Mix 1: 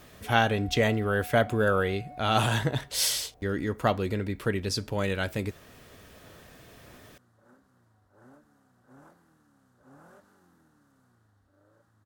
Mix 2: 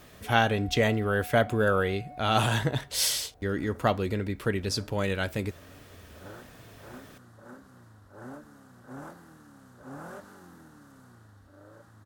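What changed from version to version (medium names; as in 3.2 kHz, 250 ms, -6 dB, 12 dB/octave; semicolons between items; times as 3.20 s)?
second sound +12.0 dB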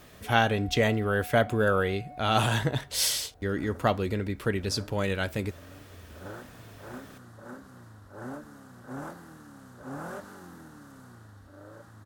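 second sound +4.0 dB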